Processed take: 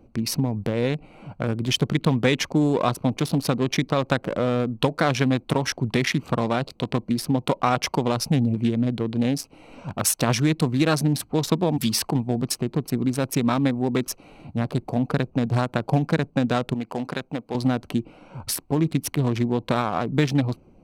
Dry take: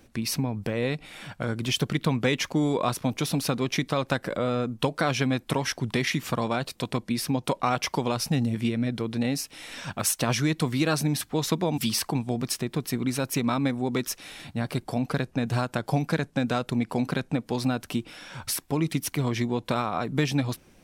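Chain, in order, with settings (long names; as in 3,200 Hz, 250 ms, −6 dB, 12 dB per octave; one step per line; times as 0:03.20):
adaptive Wiener filter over 25 samples
0:16.74–0:17.55: low-shelf EQ 340 Hz −11.5 dB
level +4.5 dB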